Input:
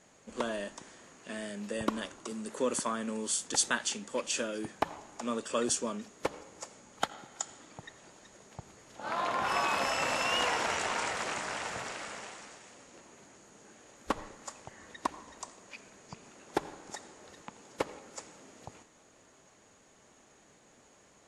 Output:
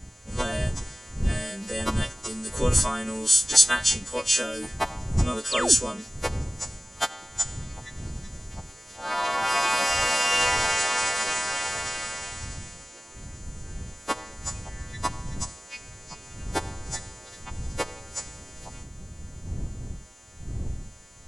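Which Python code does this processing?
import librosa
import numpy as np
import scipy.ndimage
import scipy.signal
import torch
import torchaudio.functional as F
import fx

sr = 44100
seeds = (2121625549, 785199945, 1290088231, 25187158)

y = fx.freq_snap(x, sr, grid_st=2)
y = fx.dmg_wind(y, sr, seeds[0], corner_hz=100.0, level_db=-39.0)
y = fx.spec_paint(y, sr, seeds[1], shape='fall', start_s=5.51, length_s=0.24, low_hz=210.0, high_hz=5300.0, level_db=-32.0)
y = y * 10.0 ** (4.0 / 20.0)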